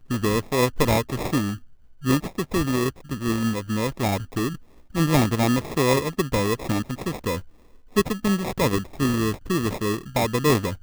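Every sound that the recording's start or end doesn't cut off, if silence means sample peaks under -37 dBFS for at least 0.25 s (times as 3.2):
2.02–4.56
4.91–7.44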